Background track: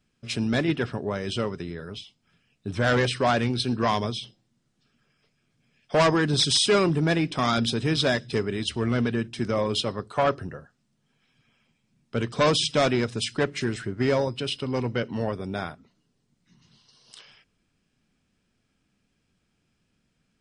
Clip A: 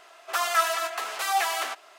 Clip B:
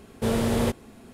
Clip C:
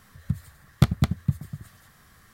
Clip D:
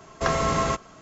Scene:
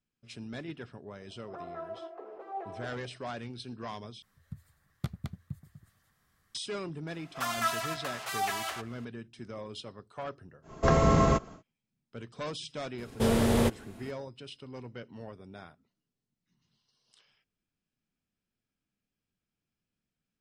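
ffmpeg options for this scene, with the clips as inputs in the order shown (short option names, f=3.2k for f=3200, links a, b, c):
-filter_complex "[1:a]asplit=2[a][b];[0:a]volume=-16.5dB[c];[a]lowpass=f=410:t=q:w=2.8[d];[4:a]tiltshelf=f=800:g=6[e];[c]asplit=2[f][g];[f]atrim=end=4.224[h];[3:a]atrim=end=2.33,asetpts=PTS-STARTPTS,volume=-16.5dB[i];[g]atrim=start=6.546[j];[d]atrim=end=1.98,asetpts=PTS-STARTPTS,volume=-4.5dB,afade=t=in:d=0.004:c=hsin,afade=t=out:st=1.976:d=0.004:c=hsin,adelay=1200[k];[b]atrim=end=1.98,asetpts=PTS-STARTPTS,volume=-7dB,afade=t=in:d=0.004:c=hsin,afade=t=out:st=1.976:d=0.004:c=hsin,adelay=7070[l];[e]atrim=end=1.01,asetpts=PTS-STARTPTS,volume=-1dB,afade=t=in:d=0.1,afade=t=out:st=0.91:d=0.1,adelay=10620[m];[2:a]atrim=end=1.13,asetpts=PTS-STARTPTS,volume=-1dB,afade=t=in:d=0.004:c=hsin,afade=t=out:st=1.126:d=0.004:c=hsin,adelay=12980[n];[h][i]acrossfade=d=0.004:c1=hsin:c2=hsin[o];[o][j]acrossfade=d=0.004:c1=hsin:c2=hsin[p];[p][k][l][m][n]amix=inputs=5:normalize=0"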